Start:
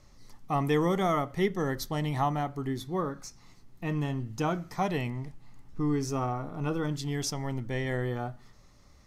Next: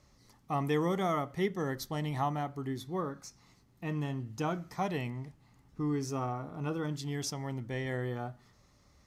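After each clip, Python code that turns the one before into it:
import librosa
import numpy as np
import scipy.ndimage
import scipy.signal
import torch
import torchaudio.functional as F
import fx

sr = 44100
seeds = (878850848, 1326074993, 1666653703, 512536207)

y = scipy.signal.sosfilt(scipy.signal.butter(2, 45.0, 'highpass', fs=sr, output='sos'), x)
y = F.gain(torch.from_numpy(y), -4.0).numpy()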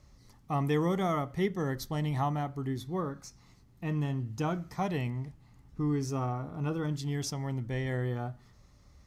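y = fx.low_shelf(x, sr, hz=120.0, db=10.5)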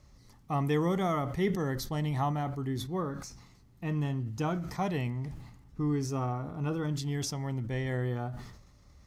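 y = fx.sustainer(x, sr, db_per_s=57.0)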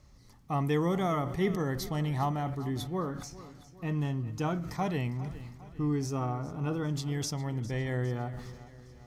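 y = fx.echo_feedback(x, sr, ms=405, feedback_pct=51, wet_db=-16.5)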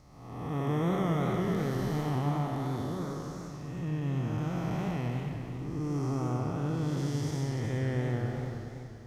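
y = fx.spec_blur(x, sr, span_ms=486.0)
y = fx.echo_warbled(y, sr, ms=96, feedback_pct=75, rate_hz=2.8, cents=215, wet_db=-9)
y = F.gain(torch.from_numpy(y), 2.0).numpy()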